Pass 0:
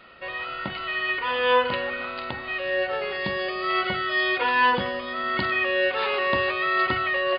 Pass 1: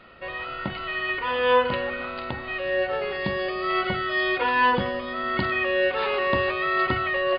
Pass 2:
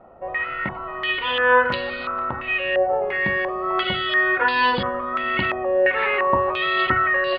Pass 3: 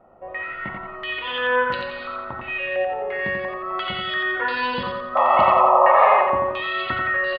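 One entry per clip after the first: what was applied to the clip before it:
tilt EQ -1.5 dB/octave
step-sequenced low-pass 2.9 Hz 770–4300 Hz
painted sound noise, 5.15–6.23 s, 510–1300 Hz -11 dBFS; on a send: feedback delay 88 ms, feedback 44%, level -4 dB; on the sum: trim -5.5 dB

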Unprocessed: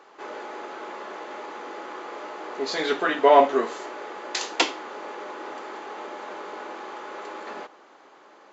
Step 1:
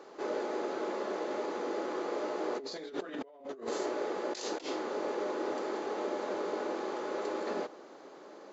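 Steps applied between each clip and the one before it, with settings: high-order bell 1.6 kHz -9 dB 2.4 oct; compressor with a negative ratio -38 dBFS, ratio -1; treble shelf 5.1 kHz -7.5 dB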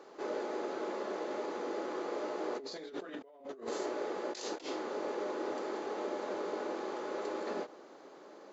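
endings held to a fixed fall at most 260 dB/s; trim -2.5 dB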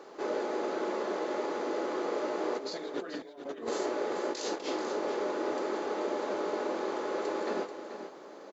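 delay 436 ms -10 dB; trim +4.5 dB

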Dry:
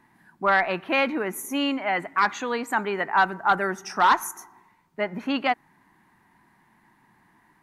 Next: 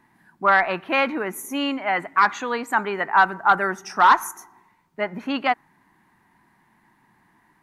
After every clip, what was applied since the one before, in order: dynamic bell 1.2 kHz, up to +5 dB, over -32 dBFS, Q 1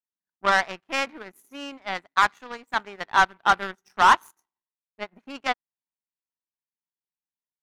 power-law waveshaper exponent 2; trim +1.5 dB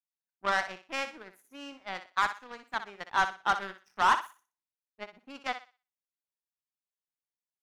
thinning echo 61 ms, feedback 28%, high-pass 420 Hz, level -10 dB; trim -8 dB

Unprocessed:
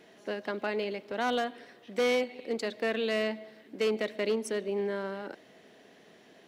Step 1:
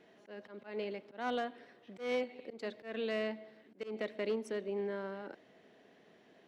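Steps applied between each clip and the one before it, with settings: low-pass 2.9 kHz 6 dB/octave; slow attack 165 ms; trim -5.5 dB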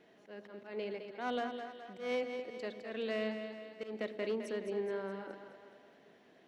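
two-band feedback delay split 400 Hz, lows 101 ms, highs 210 ms, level -8 dB; trim -1 dB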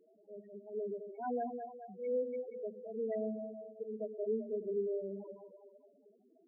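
loudest bins only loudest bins 4; trim +2 dB

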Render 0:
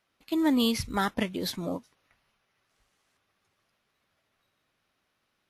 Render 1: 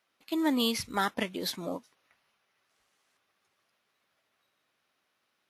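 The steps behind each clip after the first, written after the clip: high-pass 330 Hz 6 dB/octave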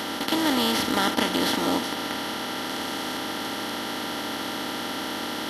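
spectral levelling over time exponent 0.2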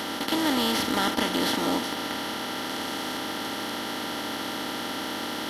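waveshaping leveller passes 1; trim -5 dB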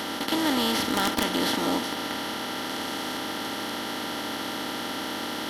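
integer overflow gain 13 dB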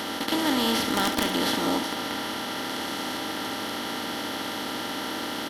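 delay 70 ms -10.5 dB

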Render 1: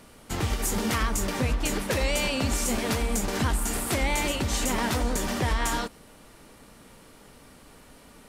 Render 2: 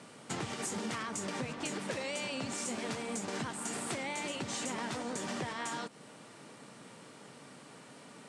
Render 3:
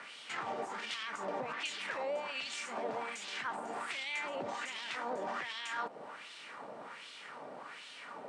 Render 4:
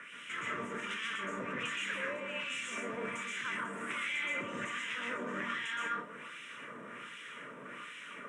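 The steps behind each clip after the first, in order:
elliptic band-pass 130–8800 Hz, stop band 40 dB; compression 6:1, threshold -35 dBFS, peak gain reduction 11.5 dB
peak limiter -34.5 dBFS, peak gain reduction 10 dB; wah-wah 1.3 Hz 630–3400 Hz, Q 2.2; trim +13.5 dB
static phaser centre 1.9 kHz, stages 4; reverberation, pre-delay 115 ms, DRR -1.5 dB; trim +1.5 dB

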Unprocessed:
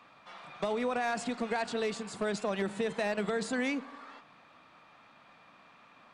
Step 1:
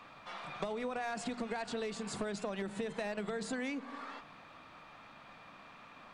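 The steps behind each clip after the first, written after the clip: bass shelf 82 Hz +11.5 dB; hum notches 60/120/180/240 Hz; compression, threshold -39 dBFS, peak gain reduction 11.5 dB; trim +3.5 dB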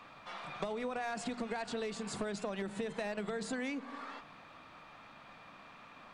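no audible change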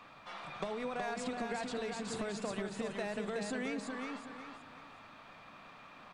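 feedback delay 371 ms, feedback 33%, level -4.5 dB; trim -1 dB

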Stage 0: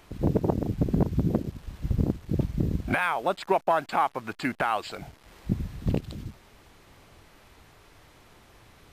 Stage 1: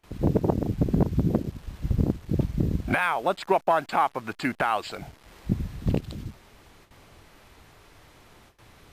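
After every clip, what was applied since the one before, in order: gate with hold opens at -45 dBFS; trim +1.5 dB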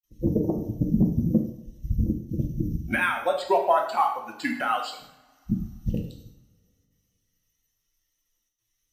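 expander on every frequency bin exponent 2; two-slope reverb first 0.65 s, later 2.6 s, from -26 dB, DRR 1 dB; trim +2 dB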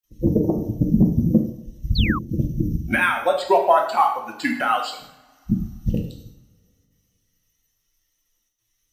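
painted sound fall, 1.95–2.19 s, 1–4.7 kHz -32 dBFS; trim +5 dB

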